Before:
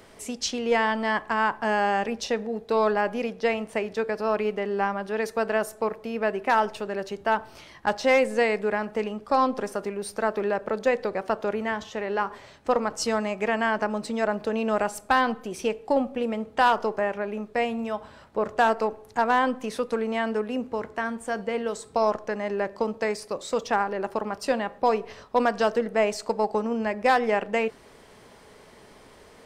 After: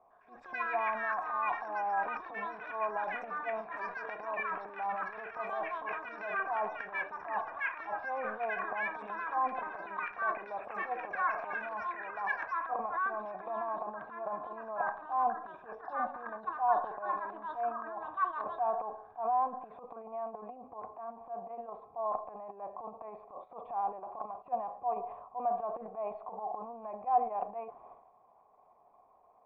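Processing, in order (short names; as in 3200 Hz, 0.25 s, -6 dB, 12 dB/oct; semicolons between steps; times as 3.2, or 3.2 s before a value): transient shaper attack -12 dB, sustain +12 dB; vocal tract filter a; echoes that change speed 0.105 s, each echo +7 st, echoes 2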